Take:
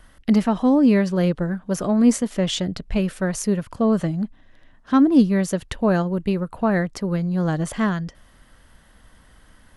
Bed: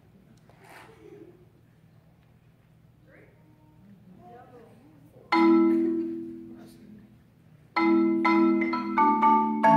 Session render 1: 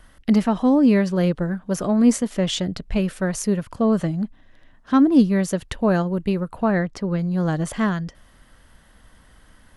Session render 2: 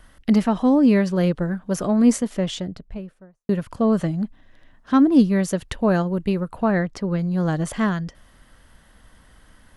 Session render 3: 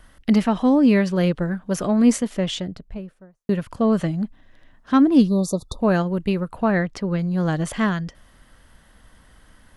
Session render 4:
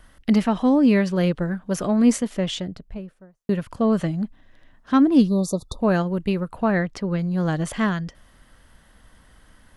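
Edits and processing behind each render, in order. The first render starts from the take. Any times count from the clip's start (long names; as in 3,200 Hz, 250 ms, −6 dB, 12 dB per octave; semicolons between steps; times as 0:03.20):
0:06.71–0:07.19: high-frequency loss of the air 63 metres
0:02.04–0:03.49: fade out and dull
0:05.28–0:05.80: time-frequency box erased 1,300–3,500 Hz; dynamic equaliser 2,700 Hz, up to +4 dB, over −42 dBFS, Q 1
level −1 dB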